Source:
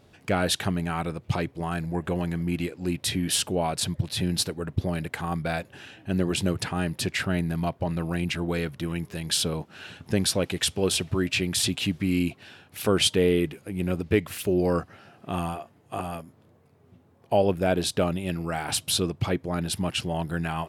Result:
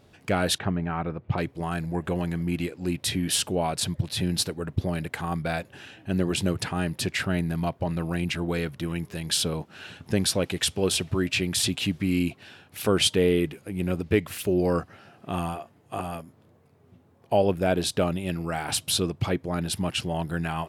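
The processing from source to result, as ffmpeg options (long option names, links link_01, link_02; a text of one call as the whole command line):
ffmpeg -i in.wav -filter_complex "[0:a]asettb=1/sr,asplit=3[link_01][link_02][link_03];[link_01]atrim=end=0.584[link_04];[link_02]atrim=start=0.58:end=1.38,asetpts=PTS-STARTPTS,afade=type=in:duration=0.004:curve=qsin,afade=type=out:start_time=0.796:duration=0.004:curve=qsin,lowpass=1900[link_05];[link_03]atrim=start=1.376[link_06];[link_04][link_05]acrossfade=duration=0.004:curve1=hsin:curve2=qsin[link_07];[link_07][link_06]acrossfade=duration=0.004:curve1=qsin:curve2=hsin" out.wav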